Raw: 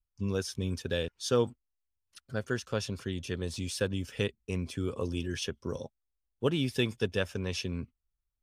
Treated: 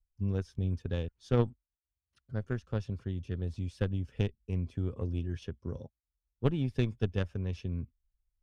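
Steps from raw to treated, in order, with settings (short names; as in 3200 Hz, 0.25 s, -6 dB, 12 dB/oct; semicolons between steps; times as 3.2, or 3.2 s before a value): added harmonics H 3 -13 dB, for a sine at -13.5 dBFS; RIAA curve playback; gain -1.5 dB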